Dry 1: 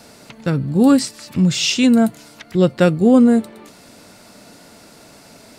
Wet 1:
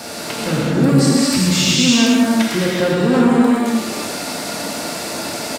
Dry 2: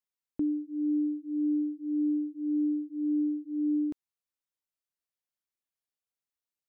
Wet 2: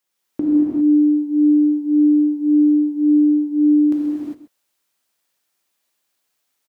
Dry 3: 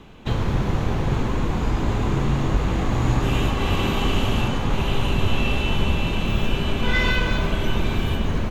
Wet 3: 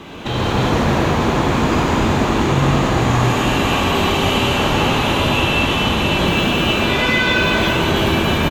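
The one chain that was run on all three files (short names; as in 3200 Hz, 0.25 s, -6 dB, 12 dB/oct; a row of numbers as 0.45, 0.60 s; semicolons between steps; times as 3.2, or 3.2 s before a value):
one-sided fold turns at -8.5 dBFS; HPF 210 Hz 6 dB/oct; compressor 5:1, threshold -30 dBFS; limiter -25.5 dBFS; echo 0.131 s -14.5 dB; non-linear reverb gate 0.43 s flat, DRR -6.5 dB; match loudness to -16 LUFS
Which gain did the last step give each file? +13.0, +13.0, +11.5 dB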